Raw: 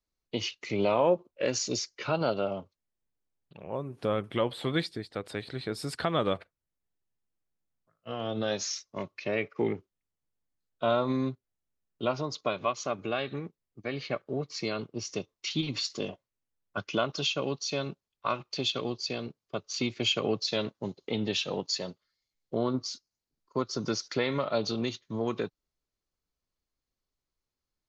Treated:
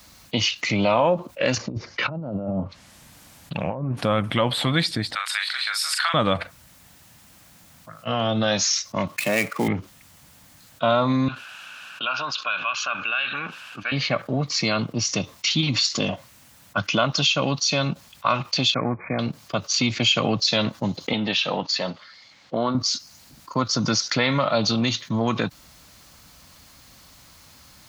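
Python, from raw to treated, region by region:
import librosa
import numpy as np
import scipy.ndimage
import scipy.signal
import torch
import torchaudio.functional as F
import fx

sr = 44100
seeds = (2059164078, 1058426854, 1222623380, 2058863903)

y = fx.chain(x, sr, fx.env_lowpass_down(base_hz=380.0, full_db=-28.0),
    fx.over_compress(threshold_db=-40.0, ratio=-0.5), at=(1.55, 3.97))
y = fx.chain(y, sr, fx.highpass(hz=1200.0, slope=24),
    fx.doubler(ms=41.0, db=-5), at=(5.15, 6.14))
y = fx.chain(y, sr, fx.dead_time(dead_ms=0.067),
    fx.highpass(hz=130.0, slope=24),
    fx.mod_noise(seeds[0], snr_db=30), at=(9.07, 9.68))
y = fx.chain(y, sr, fx.double_bandpass(hz=2000.0, octaves=0.77),
    fx.env_flatten(amount_pct=50), at=(11.28, 13.92))
y = fx.chain(y, sr, fx.law_mismatch(coded='A'),
    fx.brickwall_lowpass(high_hz=2500.0), at=(18.74, 19.19))
y = fx.chain(y, sr, fx.highpass(hz=420.0, slope=6),
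    fx.air_absorb(metres=170.0), at=(21.13, 22.75))
y = scipy.signal.sosfilt(scipy.signal.butter(2, 75.0, 'highpass', fs=sr, output='sos'), y)
y = fx.peak_eq(y, sr, hz=400.0, db=-14.5, octaves=0.54)
y = fx.env_flatten(y, sr, amount_pct=50)
y = F.gain(torch.from_numpy(y), 7.5).numpy()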